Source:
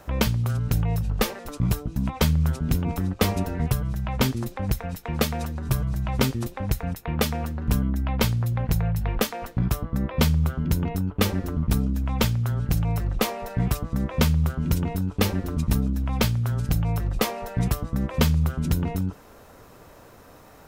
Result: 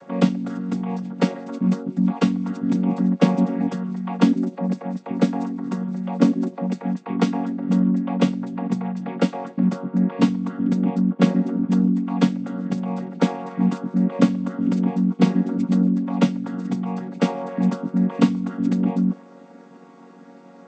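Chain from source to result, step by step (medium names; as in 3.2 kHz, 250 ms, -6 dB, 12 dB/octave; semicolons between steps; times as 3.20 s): vocoder on a held chord major triad, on F#3; 4.37–6.70 s: dynamic bell 2.9 kHz, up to -4 dB, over -51 dBFS, Q 0.77; trim +6 dB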